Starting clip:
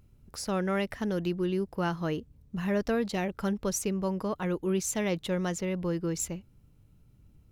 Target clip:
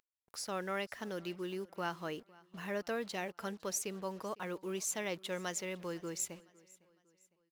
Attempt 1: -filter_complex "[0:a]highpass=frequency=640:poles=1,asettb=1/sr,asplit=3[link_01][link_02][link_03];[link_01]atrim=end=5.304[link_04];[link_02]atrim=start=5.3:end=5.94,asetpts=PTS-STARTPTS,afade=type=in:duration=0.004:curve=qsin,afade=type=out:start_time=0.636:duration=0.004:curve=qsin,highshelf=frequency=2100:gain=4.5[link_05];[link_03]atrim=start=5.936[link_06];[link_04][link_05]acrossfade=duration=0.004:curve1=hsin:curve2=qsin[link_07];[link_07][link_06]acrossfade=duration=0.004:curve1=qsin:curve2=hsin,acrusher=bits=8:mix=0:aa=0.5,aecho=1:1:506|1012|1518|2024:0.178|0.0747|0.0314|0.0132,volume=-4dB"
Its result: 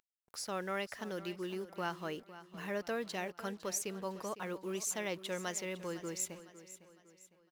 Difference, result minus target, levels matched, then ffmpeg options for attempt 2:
echo-to-direct +8.5 dB
-filter_complex "[0:a]highpass=frequency=640:poles=1,asettb=1/sr,asplit=3[link_01][link_02][link_03];[link_01]atrim=end=5.304[link_04];[link_02]atrim=start=5.3:end=5.94,asetpts=PTS-STARTPTS,afade=type=in:duration=0.004:curve=qsin,afade=type=out:start_time=0.636:duration=0.004:curve=qsin,highshelf=frequency=2100:gain=4.5[link_05];[link_03]atrim=start=5.936[link_06];[link_04][link_05]acrossfade=duration=0.004:curve1=hsin:curve2=qsin[link_07];[link_07][link_06]acrossfade=duration=0.004:curve1=qsin:curve2=hsin,acrusher=bits=8:mix=0:aa=0.5,aecho=1:1:506|1012|1518:0.0668|0.0281|0.0118,volume=-4dB"

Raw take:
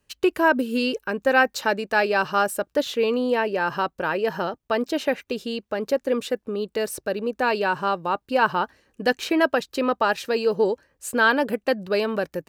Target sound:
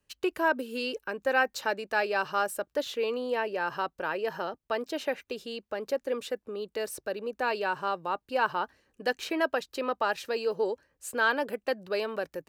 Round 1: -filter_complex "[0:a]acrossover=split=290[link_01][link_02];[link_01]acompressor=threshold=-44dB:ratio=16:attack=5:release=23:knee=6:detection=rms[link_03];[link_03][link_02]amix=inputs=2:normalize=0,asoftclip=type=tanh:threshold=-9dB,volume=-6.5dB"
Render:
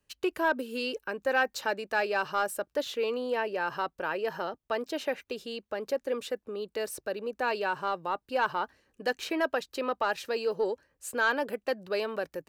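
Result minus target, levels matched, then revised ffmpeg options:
soft clipping: distortion +13 dB
-filter_complex "[0:a]acrossover=split=290[link_01][link_02];[link_01]acompressor=threshold=-44dB:ratio=16:attack=5:release=23:knee=6:detection=rms[link_03];[link_03][link_02]amix=inputs=2:normalize=0,asoftclip=type=tanh:threshold=-1.5dB,volume=-6.5dB"

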